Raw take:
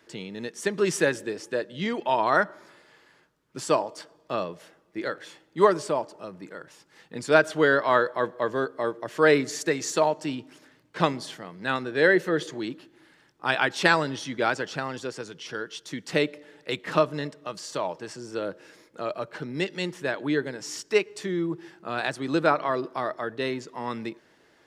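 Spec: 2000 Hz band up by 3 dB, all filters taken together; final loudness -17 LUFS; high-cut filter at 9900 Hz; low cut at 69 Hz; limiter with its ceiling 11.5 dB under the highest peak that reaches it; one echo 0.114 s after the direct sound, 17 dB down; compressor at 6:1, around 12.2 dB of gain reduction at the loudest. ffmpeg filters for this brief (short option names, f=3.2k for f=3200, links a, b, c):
-af "highpass=69,lowpass=9.9k,equalizer=f=2k:t=o:g=4,acompressor=threshold=-26dB:ratio=6,alimiter=limit=-22.5dB:level=0:latency=1,aecho=1:1:114:0.141,volume=18dB"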